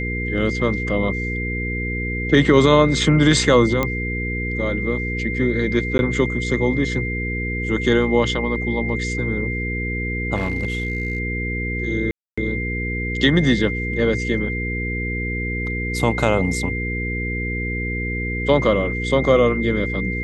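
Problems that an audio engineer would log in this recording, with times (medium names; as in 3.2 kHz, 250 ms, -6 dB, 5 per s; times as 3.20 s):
hum 60 Hz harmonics 8 -26 dBFS
whine 2.1 kHz -26 dBFS
3.83 s: pop -7 dBFS
5.98–5.99 s: dropout 11 ms
10.35–11.20 s: clipped -17 dBFS
12.11–12.38 s: dropout 265 ms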